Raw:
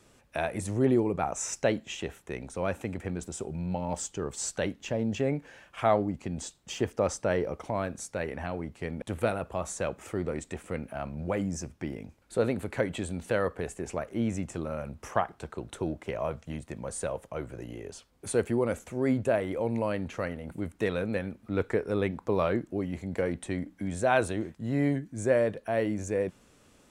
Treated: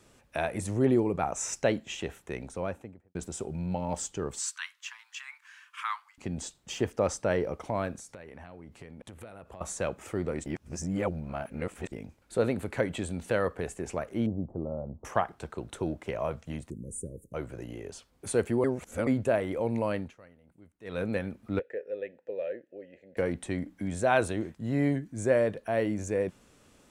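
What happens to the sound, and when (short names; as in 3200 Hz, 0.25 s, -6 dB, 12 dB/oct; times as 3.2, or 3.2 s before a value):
2.39–3.15 studio fade out
4.39–6.18 steep high-pass 1000 Hz 72 dB/oct
7.97–9.61 compressor, threshold -43 dBFS
10.46–11.92 reverse
14.26–15.05 inverse Chebyshev low-pass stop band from 2100 Hz, stop band 50 dB
16.7–17.34 inverse Chebyshev band-stop 710–4600 Hz
18.64–19.07 reverse
19.97–21.02 dip -21.5 dB, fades 0.18 s
21.59–23.17 vowel filter e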